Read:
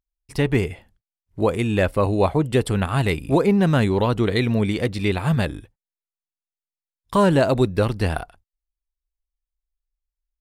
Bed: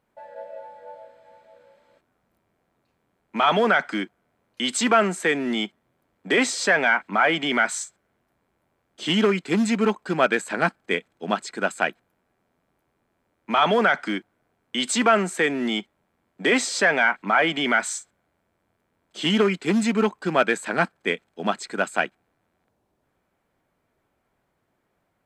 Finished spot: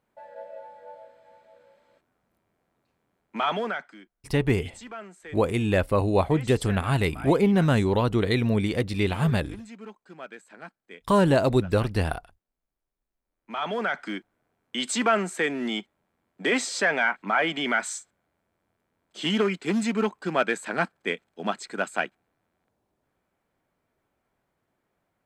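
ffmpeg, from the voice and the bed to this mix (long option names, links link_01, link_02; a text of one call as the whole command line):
ffmpeg -i stem1.wav -i stem2.wav -filter_complex "[0:a]adelay=3950,volume=-3dB[link_01];[1:a]volume=14.5dB,afade=type=out:start_time=3.18:duration=0.77:silence=0.11885,afade=type=in:start_time=13.17:duration=1.25:silence=0.133352[link_02];[link_01][link_02]amix=inputs=2:normalize=0" out.wav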